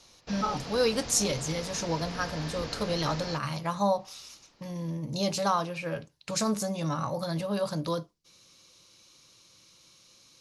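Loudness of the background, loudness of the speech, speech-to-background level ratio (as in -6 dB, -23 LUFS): -39.5 LUFS, -30.5 LUFS, 9.0 dB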